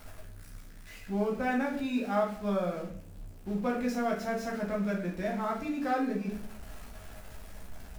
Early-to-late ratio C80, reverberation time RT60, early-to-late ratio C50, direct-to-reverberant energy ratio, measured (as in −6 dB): 10.5 dB, 0.55 s, 6.5 dB, −2.5 dB